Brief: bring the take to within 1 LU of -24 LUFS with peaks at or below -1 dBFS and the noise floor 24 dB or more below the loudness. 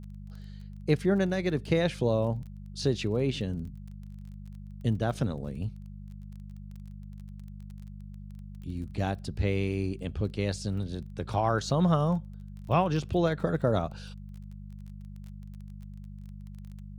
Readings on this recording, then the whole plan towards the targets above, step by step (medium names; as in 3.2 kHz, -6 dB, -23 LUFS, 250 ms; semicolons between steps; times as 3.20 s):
tick rate 20 per s; hum 50 Hz; highest harmonic 200 Hz; hum level -40 dBFS; loudness -29.5 LUFS; peak level -11.5 dBFS; loudness target -24.0 LUFS
-> de-click; de-hum 50 Hz, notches 4; trim +5.5 dB